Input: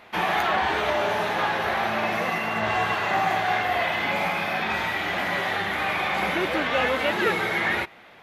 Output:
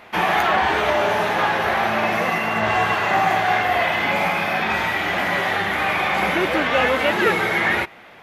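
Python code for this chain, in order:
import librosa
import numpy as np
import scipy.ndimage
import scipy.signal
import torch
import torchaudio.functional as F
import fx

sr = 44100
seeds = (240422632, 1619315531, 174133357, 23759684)

y = fx.peak_eq(x, sr, hz=3900.0, db=-3.0, octaves=0.48)
y = y * librosa.db_to_amplitude(5.0)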